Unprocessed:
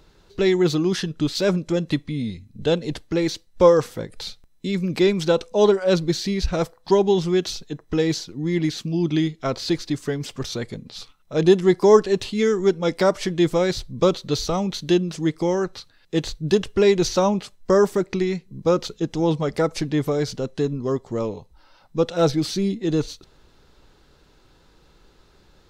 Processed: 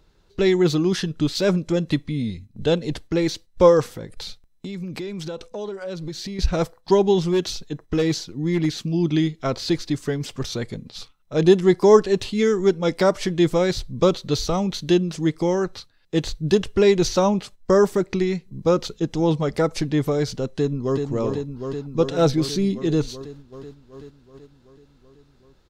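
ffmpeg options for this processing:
-filter_complex "[0:a]asettb=1/sr,asplit=3[s0][s1][s2];[s0]atrim=end=3.964[s3];[s1]atrim=start=3.96:end=6.39,asetpts=PTS-STARTPTS,afade=t=in:d=0.004:c=qsin,afade=t=out:st=2.426:d=0.004:c=qsin,acompressor=threshold=0.0355:ratio=6:attack=3.2:release=140:knee=1:detection=peak[s4];[s2]atrim=start=6.386[s5];[s3][s4]acrossfade=d=0.004:c1=hsin:c2=qsin[s6];[s6][s5]acrossfade=d=0.004:c1=qsin:c2=hsin,asettb=1/sr,asplit=3[s7][s8][s9];[s7]atrim=end=7.244[s10];[s8]atrim=start=7.24:end=8.66,asetpts=PTS-STARTPTS,afade=t=in:d=0.004:c=qsin,afade=t=out:st=1.416:d=0.004:c=qsin,asoftclip=type=hard:threshold=0.168[s11];[s9]atrim=start=8.656[s12];[s10][s11]acrossfade=d=0.004:c1=hsin:c2=qsin[s13];[s13][s12]acrossfade=d=0.004:c1=qsin:c2=hsin,asplit=2[s14][s15];[s15]afade=t=in:st=20.5:d=0.01,afade=t=out:st=21.01:d=0.01,aecho=0:1:380|760|1140|1520|1900|2280|2660|3040|3420|3800|4180|4560:0.562341|0.449873|0.359898|0.287919|0.230335|0.184268|0.147414|0.117932|0.0943452|0.0754762|0.0603809|0.0483048[s16];[s14][s16]amix=inputs=2:normalize=0,agate=range=0.447:threshold=0.00891:ratio=16:detection=peak,lowshelf=f=130:g=4"

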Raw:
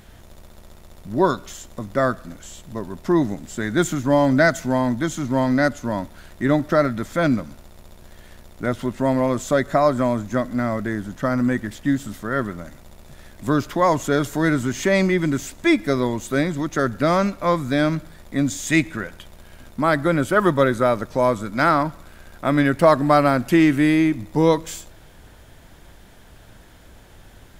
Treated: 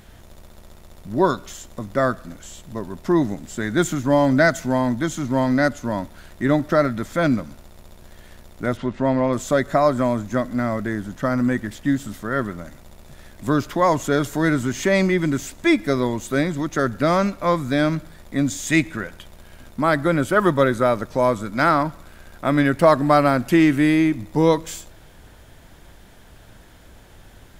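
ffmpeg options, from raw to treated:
-filter_complex "[0:a]asettb=1/sr,asplit=3[s0][s1][s2];[s0]atrim=end=8.774[s3];[s1]atrim=start=8.77:end=9.33,asetpts=PTS-STARTPTS,afade=t=in:d=0.004:c=qsin,afade=t=out:st=0.556:d=0.004:c=qsin,lowpass=4400[s4];[s2]atrim=start=9.326[s5];[s3][s4]acrossfade=d=0.004:c1=hsin:c2=qsin[s6];[s6][s5]acrossfade=d=0.004:c1=qsin:c2=hsin"

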